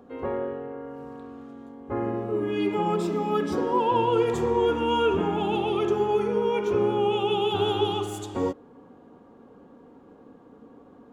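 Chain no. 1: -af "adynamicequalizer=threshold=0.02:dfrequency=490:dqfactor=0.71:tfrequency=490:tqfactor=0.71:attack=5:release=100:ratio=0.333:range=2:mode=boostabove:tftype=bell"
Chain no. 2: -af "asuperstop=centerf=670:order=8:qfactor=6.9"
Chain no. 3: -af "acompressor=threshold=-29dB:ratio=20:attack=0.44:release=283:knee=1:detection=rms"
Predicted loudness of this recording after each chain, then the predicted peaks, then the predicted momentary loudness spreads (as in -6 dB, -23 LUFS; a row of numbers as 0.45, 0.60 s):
-22.5, -25.5, -37.0 LUFS; -9.0, -12.0, -26.5 dBFS; 13, 16, 15 LU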